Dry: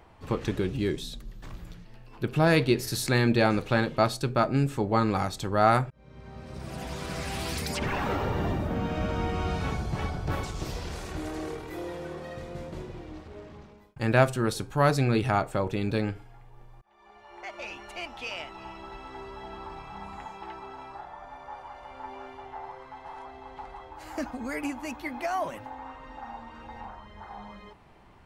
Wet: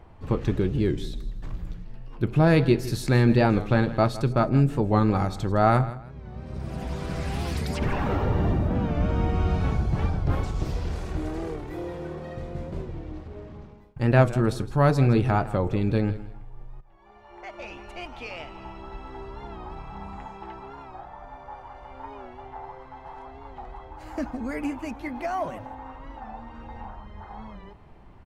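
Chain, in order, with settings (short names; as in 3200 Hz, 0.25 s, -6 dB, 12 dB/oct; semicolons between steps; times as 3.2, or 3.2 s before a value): tilt -2 dB/oct; feedback echo 0.162 s, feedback 25%, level -16 dB; record warp 45 rpm, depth 100 cents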